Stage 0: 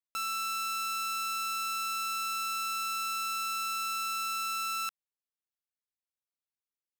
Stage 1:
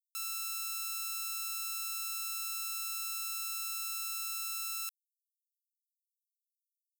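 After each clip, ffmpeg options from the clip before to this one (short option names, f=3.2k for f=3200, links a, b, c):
-af "aderivative"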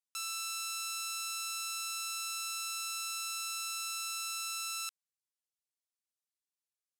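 -af "lowpass=9k,volume=3.5dB"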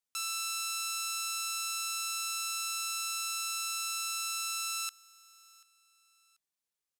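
-af "aecho=1:1:737|1474:0.0631|0.0227,volume=3dB"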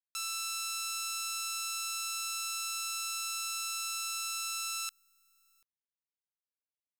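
-af "lowshelf=f=300:g=-11.5,acrusher=bits=7:dc=4:mix=0:aa=0.000001"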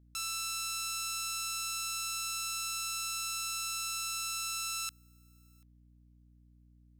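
-af "aeval=exprs='val(0)+0.001*(sin(2*PI*60*n/s)+sin(2*PI*2*60*n/s)/2+sin(2*PI*3*60*n/s)/3+sin(2*PI*4*60*n/s)/4+sin(2*PI*5*60*n/s)/5)':c=same"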